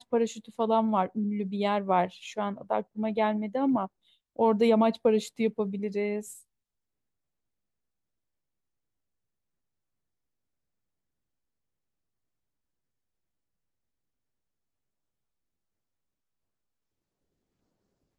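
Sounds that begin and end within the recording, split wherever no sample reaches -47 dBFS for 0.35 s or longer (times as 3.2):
4.36–6.4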